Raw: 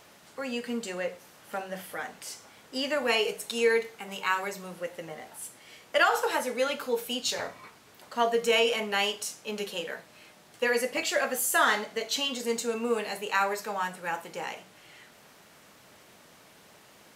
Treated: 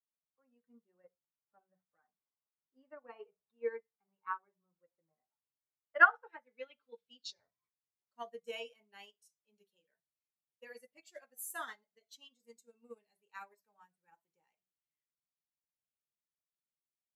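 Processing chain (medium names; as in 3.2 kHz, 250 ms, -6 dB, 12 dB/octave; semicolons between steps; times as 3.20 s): expander on every frequency bin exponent 1.5; low-pass sweep 1.2 kHz -> 12 kHz, 5.75–8.29 s; upward expansion 2.5:1, over -37 dBFS; trim -2 dB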